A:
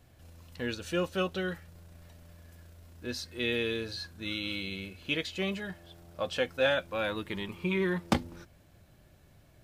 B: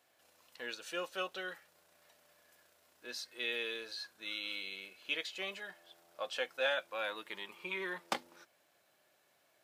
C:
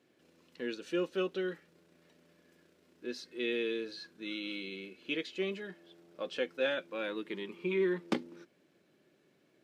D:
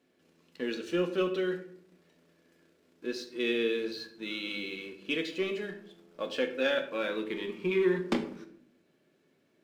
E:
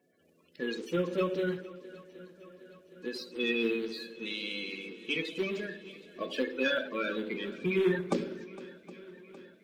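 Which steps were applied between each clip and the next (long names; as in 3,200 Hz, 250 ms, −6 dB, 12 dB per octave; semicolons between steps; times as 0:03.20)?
high-pass filter 600 Hz 12 dB per octave; level −4 dB
drawn EQ curve 100 Hz 0 dB, 160 Hz +10 dB, 380 Hz +9 dB, 700 Hz −11 dB, 2,300 Hz −6 dB, 5,700 Hz −10 dB, 14,000 Hz −19 dB; level +5.5 dB
leveller curve on the samples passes 1; on a send at −5 dB: convolution reverb RT60 0.60 s, pre-delay 4 ms
spectral magnitudes quantised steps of 30 dB; feedback echo with a long and a short gap by turns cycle 765 ms, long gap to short 1.5 to 1, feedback 57%, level −19 dB; every ending faded ahead of time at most 180 dB per second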